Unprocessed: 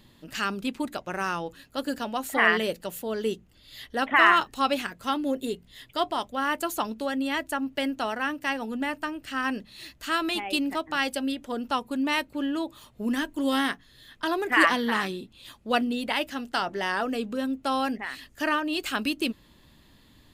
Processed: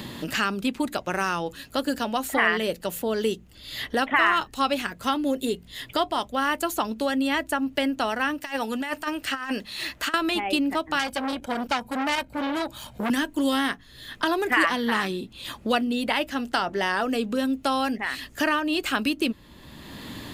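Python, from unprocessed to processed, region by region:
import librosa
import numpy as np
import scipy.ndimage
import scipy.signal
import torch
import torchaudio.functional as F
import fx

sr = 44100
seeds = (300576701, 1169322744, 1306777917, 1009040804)

y = fx.chain(x, sr, fx.low_shelf(hz=370.0, db=-12.0),
    fx.clip_hard(threshold_db=-21.0),
    fx.over_compress(threshold_db=-35.0, ratio=-0.5), at=(8.38, 10.14))
y = fx.chain(y, sr, fx.comb(ms=1.3, depth=0.54),
    fx.transformer_sat(knee_hz=3700.0), at=(10.99, 13.1))
y = fx.peak_eq(y, sr, hz=68.0, db=5.0, octaves=0.98)
y = fx.band_squash(y, sr, depth_pct=70)
y = F.gain(torch.from_numpy(y), 2.5).numpy()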